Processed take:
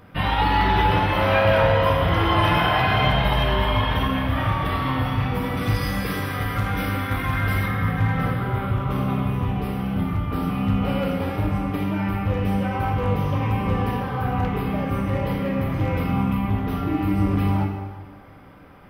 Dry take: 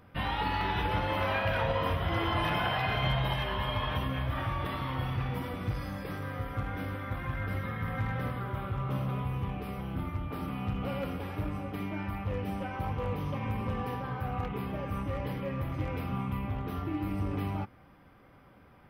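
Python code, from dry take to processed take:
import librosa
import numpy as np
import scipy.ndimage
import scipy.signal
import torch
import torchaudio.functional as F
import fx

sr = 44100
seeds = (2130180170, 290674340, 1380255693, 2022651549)

y = fx.high_shelf(x, sr, hz=2300.0, db=10.0, at=(5.57, 7.66))
y = fx.rev_plate(y, sr, seeds[0], rt60_s=1.6, hf_ratio=0.75, predelay_ms=0, drr_db=2.0)
y = y * 10.0 ** (8.0 / 20.0)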